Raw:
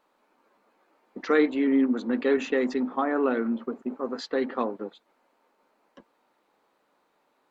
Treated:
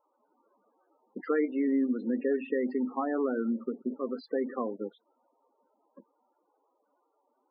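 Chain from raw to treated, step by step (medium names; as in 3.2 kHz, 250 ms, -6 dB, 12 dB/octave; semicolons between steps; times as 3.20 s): compression 2:1, threshold -27 dBFS, peak gain reduction 6.5 dB; loudest bins only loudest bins 16; distance through air 300 m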